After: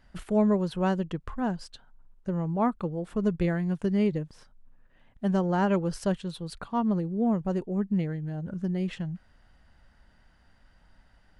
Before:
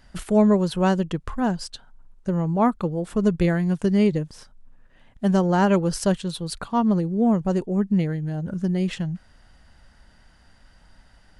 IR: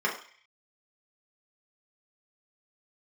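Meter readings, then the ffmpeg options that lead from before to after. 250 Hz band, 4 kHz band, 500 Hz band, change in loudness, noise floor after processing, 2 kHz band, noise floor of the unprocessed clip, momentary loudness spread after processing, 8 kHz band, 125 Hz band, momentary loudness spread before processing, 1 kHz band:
-6.0 dB, -9.0 dB, -6.0 dB, -6.0 dB, -61 dBFS, -6.5 dB, -55 dBFS, 11 LU, -12.5 dB, -6.0 dB, 11 LU, -6.0 dB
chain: -af "bass=f=250:g=0,treble=f=4k:g=-7,volume=-6dB"

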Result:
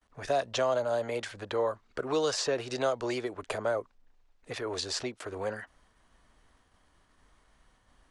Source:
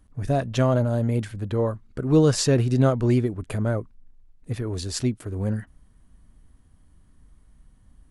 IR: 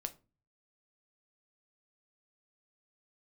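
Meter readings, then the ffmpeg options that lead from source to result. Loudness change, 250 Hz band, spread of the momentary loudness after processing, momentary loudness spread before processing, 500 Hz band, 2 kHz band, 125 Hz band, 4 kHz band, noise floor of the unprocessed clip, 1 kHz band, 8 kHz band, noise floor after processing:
-8.5 dB, -15.5 dB, 10 LU, 11 LU, -4.5 dB, -0.5 dB, -23.5 dB, -1.5 dB, -57 dBFS, -1.5 dB, -6.0 dB, -68 dBFS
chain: -filter_complex "[0:a]agate=range=-33dB:threshold=-52dB:ratio=3:detection=peak,acrossover=split=400|1100|3700[a][b][c][d];[a]acompressor=threshold=-34dB:ratio=4[e];[b]acompressor=threshold=-32dB:ratio=4[f];[c]acompressor=threshold=-49dB:ratio=4[g];[d]acompressor=threshold=-39dB:ratio=4[h];[e][f][g][h]amix=inputs=4:normalize=0,acrossover=split=440 7200:gain=0.1 1 0.0891[i][j][k];[i][j][k]amix=inputs=3:normalize=0,volume=7dB"

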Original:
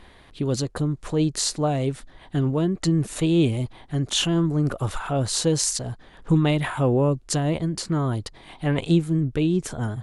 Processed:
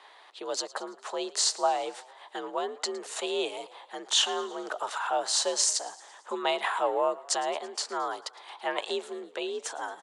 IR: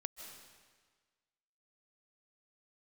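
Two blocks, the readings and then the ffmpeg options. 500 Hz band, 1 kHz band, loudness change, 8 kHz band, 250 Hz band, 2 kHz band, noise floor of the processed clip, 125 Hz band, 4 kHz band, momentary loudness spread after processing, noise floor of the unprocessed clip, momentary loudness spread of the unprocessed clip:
-4.5 dB, +2.5 dB, -6.0 dB, -1.5 dB, -20.0 dB, -1.0 dB, -54 dBFS, under -40 dB, 0.0 dB, 16 LU, -50 dBFS, 9 LU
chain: -filter_complex "[0:a]highpass=f=430:w=0.5412,highpass=f=430:w=1.3066,equalizer=f=450:t=q:w=4:g=-8,equalizer=f=850:t=q:w=4:g=5,equalizer=f=2.2k:t=q:w=4:g=-4,lowpass=f=8.4k:w=0.5412,lowpass=f=8.4k:w=1.3066,asplit=6[a][b][c][d][e][f];[b]adelay=111,afreqshift=35,volume=-20dB[g];[c]adelay=222,afreqshift=70,volume=-24.7dB[h];[d]adelay=333,afreqshift=105,volume=-29.5dB[i];[e]adelay=444,afreqshift=140,volume=-34.2dB[j];[f]adelay=555,afreqshift=175,volume=-38.9dB[k];[a][g][h][i][j][k]amix=inputs=6:normalize=0,afreqshift=58"

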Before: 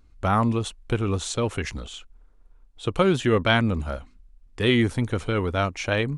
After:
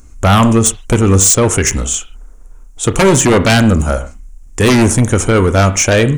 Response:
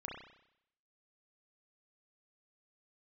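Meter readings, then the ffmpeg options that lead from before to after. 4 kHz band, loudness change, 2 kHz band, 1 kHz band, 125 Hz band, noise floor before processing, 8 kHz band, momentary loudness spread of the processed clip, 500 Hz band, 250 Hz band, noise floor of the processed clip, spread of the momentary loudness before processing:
+10.5 dB, +13.0 dB, +10.5 dB, +11.0 dB, +13.5 dB, -54 dBFS, +26.5 dB, 10 LU, +12.0 dB, +12.5 dB, -37 dBFS, 13 LU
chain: -filter_complex "[0:a]highshelf=f=5.3k:t=q:w=3:g=9,aeval=exprs='0.473*sin(PI/2*3.55*val(0)/0.473)':c=same,asplit=2[a][b];[1:a]atrim=start_sample=2205,atrim=end_sample=6615[c];[b][c]afir=irnorm=-1:irlink=0,volume=-6dB[d];[a][d]amix=inputs=2:normalize=0,volume=-1dB"

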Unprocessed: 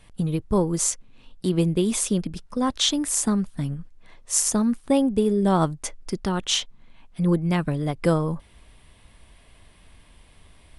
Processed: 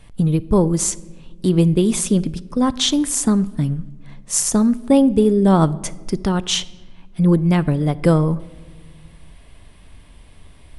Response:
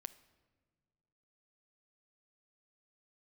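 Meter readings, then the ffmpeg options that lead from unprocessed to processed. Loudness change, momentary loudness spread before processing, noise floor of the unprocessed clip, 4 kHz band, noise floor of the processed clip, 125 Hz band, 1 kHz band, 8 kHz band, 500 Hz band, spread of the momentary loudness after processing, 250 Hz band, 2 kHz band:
+5.5 dB, 11 LU, -54 dBFS, +3.0 dB, -45 dBFS, +7.5 dB, +3.5 dB, +3.0 dB, +5.5 dB, 10 LU, +7.0 dB, +3.0 dB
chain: -filter_complex "[0:a]asplit=2[a][b];[1:a]atrim=start_sample=2205,lowshelf=f=480:g=7[c];[b][c]afir=irnorm=-1:irlink=0,volume=11dB[d];[a][d]amix=inputs=2:normalize=0,volume=-7dB"

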